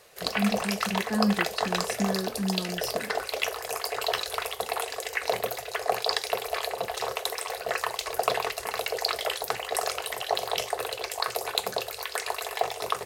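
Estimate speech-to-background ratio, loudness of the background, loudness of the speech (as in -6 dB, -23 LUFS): -1.0 dB, -30.0 LUFS, -31.0 LUFS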